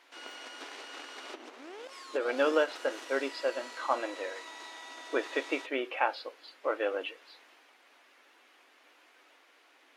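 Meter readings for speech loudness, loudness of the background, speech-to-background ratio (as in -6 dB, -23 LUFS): -33.0 LUFS, -45.0 LUFS, 12.0 dB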